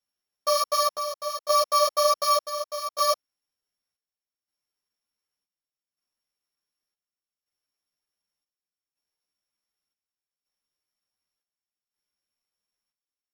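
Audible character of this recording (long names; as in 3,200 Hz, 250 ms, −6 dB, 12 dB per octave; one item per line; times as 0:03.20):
a buzz of ramps at a fixed pitch in blocks of 8 samples
chopped level 0.67 Hz, depth 65%, duty 65%
a shimmering, thickened sound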